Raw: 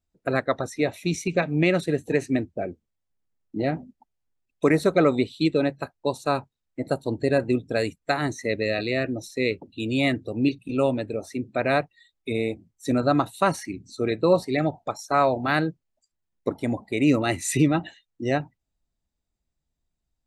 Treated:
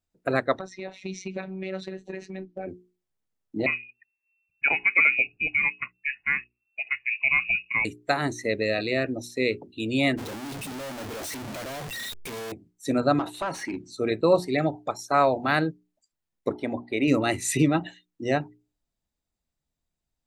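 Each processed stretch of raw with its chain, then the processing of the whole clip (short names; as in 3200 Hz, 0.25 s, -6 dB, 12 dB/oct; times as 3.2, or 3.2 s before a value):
0.59–2.67 LPF 5500 Hz 24 dB/oct + compressor 10:1, threshold -26 dBFS + robotiser 189 Hz
3.66–7.85 inverted band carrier 2700 Hz + cascading phaser rising 1.4 Hz
10.17–12.52 infinite clipping + expander -22 dBFS
13.19–13.89 compressor 16:1, threshold -28 dBFS + overdrive pedal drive 20 dB, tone 1400 Hz, clips at -18 dBFS
16.52–17.08 polynomial smoothing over 15 samples + bell 140 Hz -7.5 dB
whole clip: low shelf 91 Hz -6 dB; notches 60/120/180/240/300/360/420 Hz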